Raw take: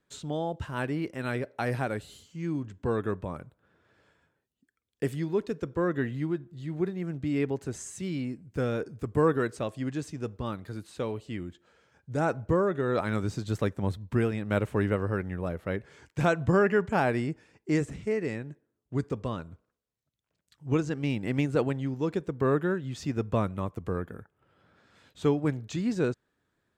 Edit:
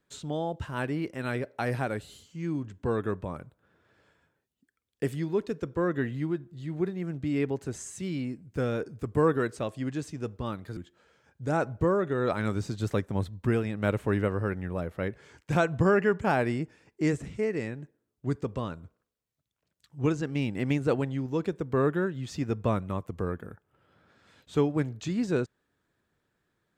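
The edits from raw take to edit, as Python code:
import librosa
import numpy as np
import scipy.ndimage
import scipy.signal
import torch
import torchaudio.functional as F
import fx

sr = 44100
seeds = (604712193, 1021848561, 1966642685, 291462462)

y = fx.edit(x, sr, fx.cut(start_s=10.77, length_s=0.68), tone=tone)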